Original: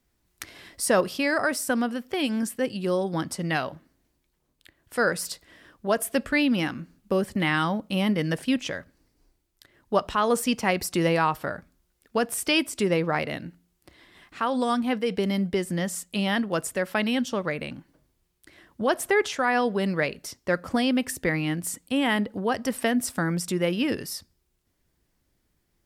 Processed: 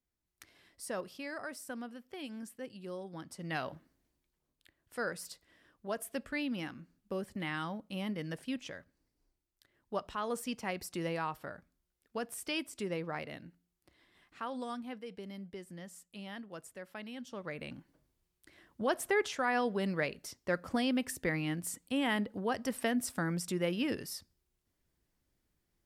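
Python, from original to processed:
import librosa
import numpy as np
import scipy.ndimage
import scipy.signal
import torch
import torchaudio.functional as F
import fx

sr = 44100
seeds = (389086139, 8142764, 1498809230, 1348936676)

y = fx.gain(x, sr, db=fx.line((3.26, -17.5), (3.72, -6.5), (5.13, -13.5), (14.46, -13.5), (15.17, -20.0), (17.16, -20.0), (17.73, -8.0)))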